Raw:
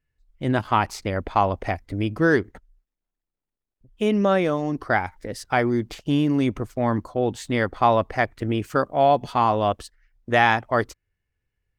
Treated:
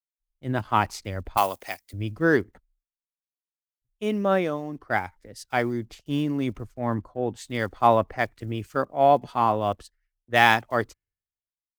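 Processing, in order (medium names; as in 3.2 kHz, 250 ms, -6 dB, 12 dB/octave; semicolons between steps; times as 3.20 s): block-companded coder 7-bit; 1.37–1.93 s: RIAA curve recording; three bands expanded up and down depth 100%; trim -4 dB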